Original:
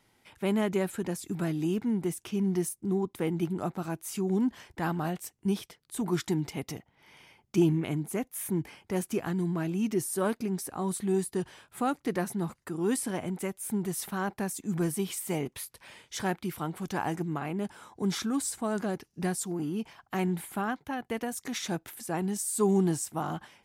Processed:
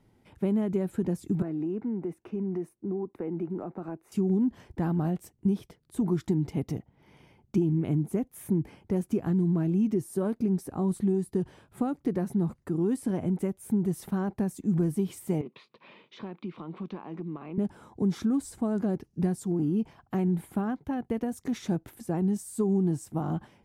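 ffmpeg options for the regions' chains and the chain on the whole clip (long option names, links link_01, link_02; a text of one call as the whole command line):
ffmpeg -i in.wav -filter_complex "[0:a]asettb=1/sr,asplit=3[link_01][link_02][link_03];[link_01]atrim=end=1.424[link_04];[link_02]atrim=start=1.42:end=4.12,asetpts=PTS-STARTPTS,afade=type=in:duration=0.004:curve=qsin,afade=type=out:start_time=2.696:duration=0.004:curve=qsin,acrossover=split=270 2700:gain=0.178 1 0.126[link_05][link_06][link_07];[link_05][link_06][link_07]amix=inputs=3:normalize=0,bandreject=frequency=3200:width=7.1,acompressor=threshold=-34dB:ratio=4:attack=3.2:release=140:knee=1:detection=peak[link_08];[link_03]atrim=start=4.116[link_09];[link_04][link_08]acrossfade=duration=0.004:curve1=hsin:curve2=qsin[link_10];[link_10][link_09]acrossfade=duration=0.004:curve1=qsin:curve2=hsin,asettb=1/sr,asplit=3[link_11][link_12][link_13];[link_11]atrim=end=15.414[link_14];[link_12]atrim=start=15.41:end=17.58,asetpts=PTS-STARTPTS,afade=type=in:duration=0.004:curve=qsin,afade=type=out:start_time=2.166:duration=0.004:curve=qsin,highpass=frequency=190:width=0.5412,highpass=frequency=190:width=1.3066,equalizer=frequency=270:width_type=q:width=4:gain=-4,equalizer=frequency=760:width_type=q:width=4:gain=-4,equalizer=frequency=1100:width_type=q:width=4:gain=8,equalizer=frequency=1600:width_type=q:width=4:gain=-4,equalizer=frequency=2500:width_type=q:width=4:gain=7,equalizer=frequency=3800:width_type=q:width=4:gain=5,lowpass=frequency=4100:width=0.5412,lowpass=frequency=4100:width=1.3066,acompressor=threshold=-39dB:ratio=4:attack=3.2:release=140:knee=1:detection=peak[link_15];[link_13]atrim=start=17.576[link_16];[link_14][link_15]acrossfade=duration=0.004:curve1=hsin:curve2=qsin[link_17];[link_17][link_16]acrossfade=duration=0.004:curve1=qsin:curve2=hsin,acompressor=threshold=-29dB:ratio=6,tiltshelf=frequency=710:gain=9.5" out.wav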